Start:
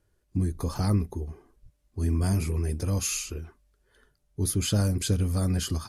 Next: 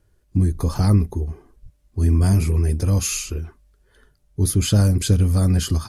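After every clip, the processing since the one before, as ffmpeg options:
ffmpeg -i in.wav -af "lowshelf=frequency=170:gain=5.5,volume=5dB" out.wav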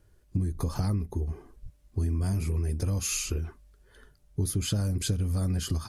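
ffmpeg -i in.wav -af "acompressor=threshold=-26dB:ratio=5" out.wav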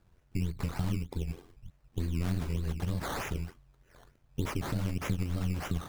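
ffmpeg -i in.wav -filter_complex "[0:a]acrossover=split=1500[link_01][link_02];[link_01]tremolo=f=88:d=0.974[link_03];[link_02]asoftclip=type=tanh:threshold=-32dB[link_04];[link_03][link_04]amix=inputs=2:normalize=0,acrusher=samples=14:mix=1:aa=0.000001:lfo=1:lforange=8.4:lforate=3.3" out.wav

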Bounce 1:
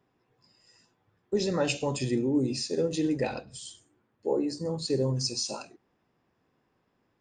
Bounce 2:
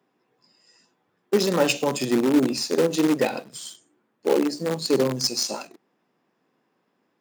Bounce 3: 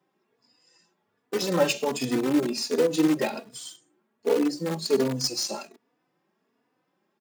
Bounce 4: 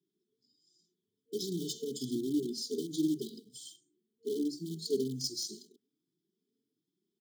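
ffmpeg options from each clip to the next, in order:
ffmpeg -i in.wav -filter_complex "[0:a]asplit=2[link_01][link_02];[link_02]acrusher=bits=5:dc=4:mix=0:aa=0.000001,volume=-4dB[link_03];[link_01][link_03]amix=inputs=2:normalize=0,highpass=frequency=170:width=0.5412,highpass=frequency=170:width=1.3066,volume=3dB" out.wav
ffmpeg -i in.wav -filter_complex "[0:a]asplit=2[link_01][link_02];[link_02]adelay=3.4,afreqshift=1.3[link_03];[link_01][link_03]amix=inputs=2:normalize=1" out.wav
ffmpeg -i in.wav -af "afftfilt=real='re*(1-between(b*sr/4096,460,3000))':imag='im*(1-between(b*sr/4096,460,3000))':win_size=4096:overlap=0.75,volume=-8.5dB" out.wav

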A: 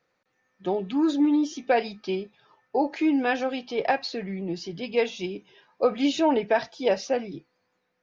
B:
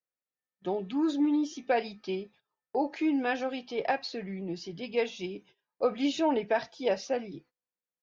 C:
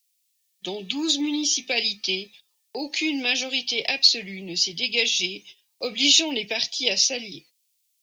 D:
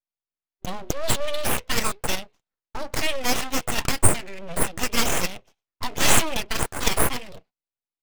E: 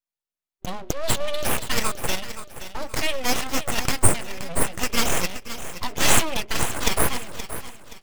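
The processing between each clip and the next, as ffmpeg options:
ffmpeg -i in.wav -af "agate=range=-23dB:threshold=-50dB:ratio=16:detection=peak,volume=-5dB" out.wav
ffmpeg -i in.wav -filter_complex "[0:a]acrossover=split=280|480|1900[link_01][link_02][link_03][link_04];[link_03]acompressor=threshold=-39dB:ratio=6[link_05];[link_01][link_02][link_05][link_04]amix=inputs=4:normalize=0,aexciter=amount=11.5:drive=5.9:freq=2300" out.wav
ffmpeg -i in.wav -af "adynamicsmooth=sensitivity=5:basefreq=780,aeval=exprs='abs(val(0))':channel_layout=same,volume=3.5dB" out.wav
ffmpeg -i in.wav -af "aecho=1:1:524|1048|1572|2096:0.251|0.0904|0.0326|0.0117" out.wav

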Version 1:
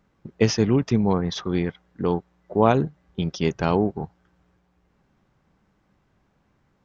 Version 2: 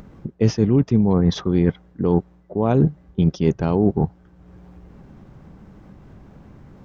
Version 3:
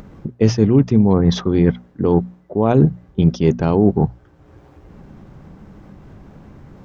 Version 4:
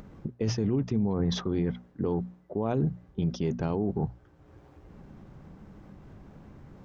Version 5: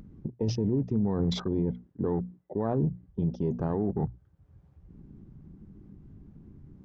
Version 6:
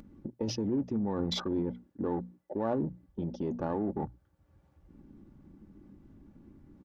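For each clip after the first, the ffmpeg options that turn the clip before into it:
ffmpeg -i in.wav -af "areverse,acompressor=threshold=-26dB:ratio=6,areverse,tiltshelf=frequency=720:gain=6.5,acompressor=mode=upward:threshold=-42dB:ratio=2.5,volume=8dB" out.wav
ffmpeg -i in.wav -af "bandreject=frequency=60:width_type=h:width=6,bandreject=frequency=120:width_type=h:width=6,bandreject=frequency=180:width_type=h:width=6,bandreject=frequency=240:width_type=h:width=6,volume=4dB" out.wav
ffmpeg -i in.wav -af "alimiter=limit=-11dB:level=0:latency=1:release=30,volume=-8dB" out.wav
ffmpeg -i in.wav -af "afwtdn=0.00891" out.wav
ffmpeg -i in.wav -filter_complex "[0:a]lowshelf=frequency=220:gain=-11,aecho=1:1:3.5:0.41,asplit=2[link_01][link_02];[link_02]asoftclip=type=tanh:threshold=-35.5dB,volume=-11dB[link_03];[link_01][link_03]amix=inputs=2:normalize=0" out.wav

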